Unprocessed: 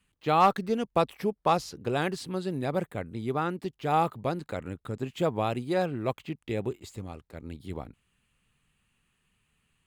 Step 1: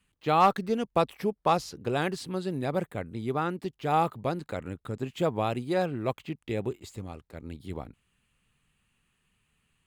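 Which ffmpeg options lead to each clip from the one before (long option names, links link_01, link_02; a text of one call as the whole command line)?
ffmpeg -i in.wav -af anull out.wav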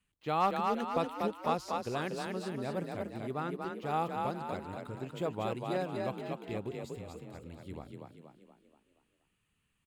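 ffmpeg -i in.wav -filter_complex "[0:a]asplit=7[link_01][link_02][link_03][link_04][link_05][link_06][link_07];[link_02]adelay=239,afreqshift=35,volume=-3.5dB[link_08];[link_03]adelay=478,afreqshift=70,volume=-9.9dB[link_09];[link_04]adelay=717,afreqshift=105,volume=-16.3dB[link_10];[link_05]adelay=956,afreqshift=140,volume=-22.6dB[link_11];[link_06]adelay=1195,afreqshift=175,volume=-29dB[link_12];[link_07]adelay=1434,afreqshift=210,volume=-35.4dB[link_13];[link_01][link_08][link_09][link_10][link_11][link_12][link_13]amix=inputs=7:normalize=0,volume=-8dB" out.wav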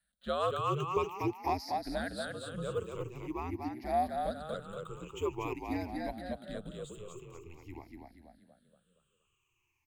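ffmpeg -i in.wav -af "afftfilt=real='re*pow(10,19/40*sin(2*PI*(0.79*log(max(b,1)*sr/1024/100)/log(2)-(-0.47)*(pts-256)/sr)))':imag='im*pow(10,19/40*sin(2*PI*(0.79*log(max(b,1)*sr/1024/100)/log(2)-(-0.47)*(pts-256)/sr)))':win_size=1024:overlap=0.75,bass=frequency=250:gain=-4,treble=frequency=4000:gain=2,afreqshift=-86,volume=-4.5dB" out.wav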